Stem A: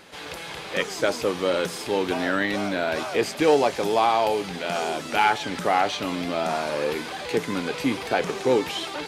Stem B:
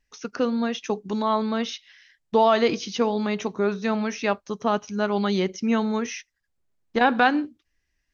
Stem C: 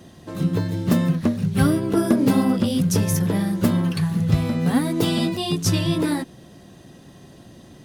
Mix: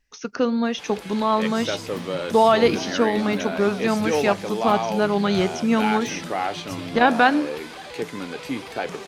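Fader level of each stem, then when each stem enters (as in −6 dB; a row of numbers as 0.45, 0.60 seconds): −4.5, +2.5, −17.0 decibels; 0.65, 0.00, 1.05 seconds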